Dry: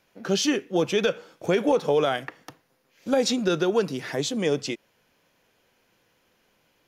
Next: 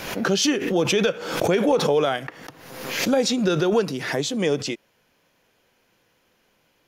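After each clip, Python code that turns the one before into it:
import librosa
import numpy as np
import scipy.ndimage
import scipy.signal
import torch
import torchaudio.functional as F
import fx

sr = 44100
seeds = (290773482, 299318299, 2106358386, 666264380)

y = fx.pre_swell(x, sr, db_per_s=54.0)
y = F.gain(torch.from_numpy(y), 1.5).numpy()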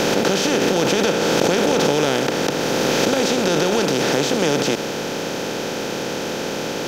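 y = fx.bin_compress(x, sr, power=0.2)
y = F.gain(torch.from_numpy(y), -5.5).numpy()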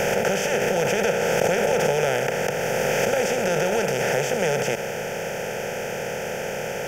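y = fx.fixed_phaser(x, sr, hz=1100.0, stages=6)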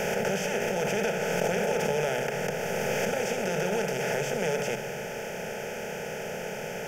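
y = fx.room_shoebox(x, sr, seeds[0], volume_m3=3200.0, walls='furnished', distance_m=1.4)
y = F.gain(torch.from_numpy(y), -7.0).numpy()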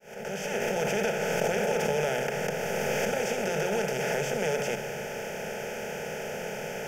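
y = fx.fade_in_head(x, sr, length_s=0.65)
y = fx.hum_notches(y, sr, base_hz=60, count=3)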